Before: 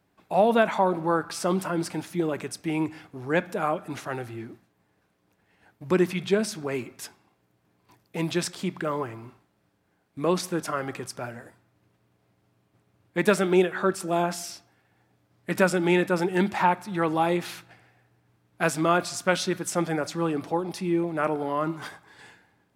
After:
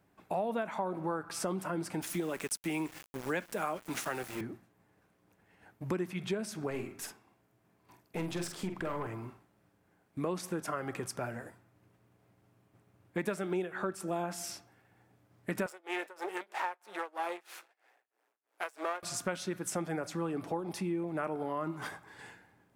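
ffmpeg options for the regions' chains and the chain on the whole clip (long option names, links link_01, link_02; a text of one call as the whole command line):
ffmpeg -i in.wav -filter_complex "[0:a]asettb=1/sr,asplit=3[link_01][link_02][link_03];[link_01]atrim=end=2.024[link_04];[link_02]atrim=start=2.02:end=4.41,asetpts=PTS-STARTPTS,afade=type=in:duration=0.004:curve=qsin,afade=type=out:start_time=2.386:duration=0.004:curve=qsin,highpass=frequency=150:width=0.5412,highpass=frequency=150:width=1.3066,highshelf=frequency=2100:gain=11,aeval=exprs='val(0)*gte(abs(val(0)),0.0141)':channel_layout=same[link_05];[link_03]atrim=start=4.406[link_06];[link_04][link_05]acrossfade=duration=0.004:curve1=hsin:curve2=qsin[link_07];[link_07][link_06]acrossfade=duration=0.004:curve1=qsin:curve2=hsin,asettb=1/sr,asplit=3[link_08][link_09][link_10];[link_08]atrim=end=6.704[link_11];[link_09]atrim=start=6.7:end=9.07,asetpts=PTS-STARTPTS,afade=type=in:duration=0.004:curve=qsin,afade=type=out:start_time=2.366:duration=0.004:curve=qsin,bandreject=frequency=50:width_type=h:width=6,bandreject=frequency=100:width_type=h:width=6,bandreject=frequency=150:width_type=h:width=6,bandreject=frequency=200:width_type=h:width=6,bandreject=frequency=250:width_type=h:width=6,bandreject=frequency=300:width_type=h:width=6,bandreject=frequency=350:width_type=h:width=6,bandreject=frequency=400:width_type=h:width=6,bandreject=frequency=450:width_type=h:width=6,aeval=exprs='(tanh(17.8*val(0)+0.45)-tanh(0.45))/17.8':channel_layout=same,asplit=2[link_12][link_13];[link_13]adelay=47,volume=-7dB[link_14];[link_12][link_14]amix=inputs=2:normalize=0,atrim=end_sample=104517[link_15];[link_10]atrim=start=9.066[link_16];[link_11][link_15]acrossfade=duration=0.004:curve1=hsin:curve2=qsin[link_17];[link_17][link_16]acrossfade=duration=0.004:curve1=qsin:curve2=hsin,asettb=1/sr,asplit=3[link_18][link_19][link_20];[link_18]atrim=end=15.664[link_21];[link_19]atrim=start=15.66:end=19.03,asetpts=PTS-STARTPTS,afade=type=in:duration=0.004:curve=qsin,afade=type=out:start_time=3.366:duration=0.004:curve=qsin,aeval=exprs='if(lt(val(0),0),0.251*val(0),val(0))':channel_layout=same,highpass=frequency=420:width=0.5412,highpass=frequency=420:width=1.3066,tremolo=f=3.1:d=0.96[link_22];[link_20]atrim=start=19.026[link_23];[link_21][link_22]acrossfade=duration=0.004:curve1=hsin:curve2=qsin[link_24];[link_24][link_23]acrossfade=duration=0.004:curve1=qsin:curve2=hsin,equalizer=frequency=4100:width_type=o:width=1.1:gain=-5,acompressor=threshold=-33dB:ratio=4" out.wav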